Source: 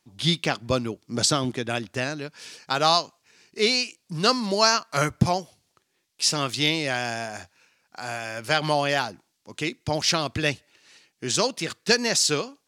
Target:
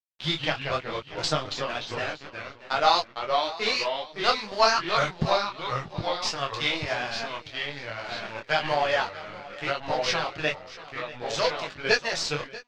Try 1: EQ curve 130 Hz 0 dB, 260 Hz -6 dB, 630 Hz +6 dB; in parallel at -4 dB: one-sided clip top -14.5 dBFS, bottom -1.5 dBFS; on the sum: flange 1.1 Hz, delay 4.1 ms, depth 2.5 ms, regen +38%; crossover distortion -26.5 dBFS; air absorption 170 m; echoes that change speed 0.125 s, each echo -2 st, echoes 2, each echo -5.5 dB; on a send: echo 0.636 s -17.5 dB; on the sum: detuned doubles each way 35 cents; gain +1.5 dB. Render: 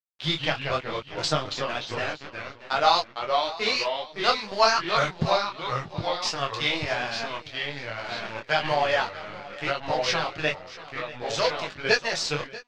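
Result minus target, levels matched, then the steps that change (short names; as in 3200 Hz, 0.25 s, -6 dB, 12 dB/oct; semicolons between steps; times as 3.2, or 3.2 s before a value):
one-sided clip: distortion -4 dB
change: one-sided clip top -22.5 dBFS, bottom -1.5 dBFS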